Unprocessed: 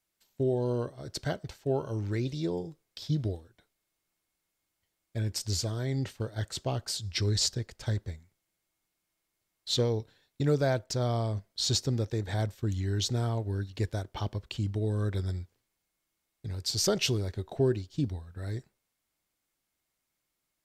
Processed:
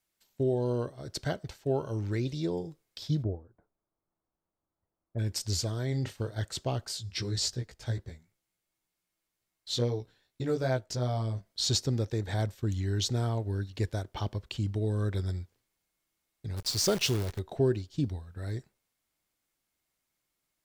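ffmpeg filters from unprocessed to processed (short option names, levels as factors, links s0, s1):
-filter_complex "[0:a]asplit=3[s0][s1][s2];[s0]afade=t=out:st=3.22:d=0.02[s3];[s1]lowpass=f=1200:w=0.5412,lowpass=f=1200:w=1.3066,afade=t=in:st=3.22:d=0.02,afade=t=out:st=5.18:d=0.02[s4];[s2]afade=t=in:st=5.18:d=0.02[s5];[s3][s4][s5]amix=inputs=3:normalize=0,asettb=1/sr,asplit=3[s6][s7][s8];[s6]atrim=end=5.884[s9];[s7]atrim=start=5.88:end=6.38,asetpts=PTS-STARTPTS,afade=t=in:d=0.004:c=qsin,afade=t=out:st=0.496:d=0.004:c=qsin,asplit=2[s10][s11];[s11]adelay=39,volume=0.282[s12];[s10][s12]amix=inputs=2:normalize=0,atrim=end_sample=22050[s13];[s8]atrim=start=6.376[s14];[s9][s13]acrossfade=d=0.004:c1=hsin:c2=qsin[s15];[s15][s14]acrossfade=d=0.004:c1=qsin:c2=hsin,asettb=1/sr,asplit=3[s16][s17][s18];[s16]atrim=end=6.884[s19];[s17]atrim=start=6.88:end=11.46,asetpts=PTS-STARTPTS,afade=t=in:d=0.004:c=qsin,afade=t=out:st=4.576:d=0.004:c=qsin,flanger=delay=15.5:depth=2:speed=2.6[s20];[s18]atrim=start=11.456[s21];[s19][s20]acrossfade=d=0.004:c1=hsin:c2=qsin[s22];[s22][s21]acrossfade=d=0.004:c1=qsin:c2=hsin,asplit=3[s23][s24][s25];[s23]afade=t=out:st=16.56:d=0.02[s26];[s24]acrusher=bits=7:dc=4:mix=0:aa=0.000001,afade=t=in:st=16.56:d=0.02,afade=t=out:st=17.38:d=0.02[s27];[s25]afade=t=in:st=17.38:d=0.02[s28];[s26][s27][s28]amix=inputs=3:normalize=0"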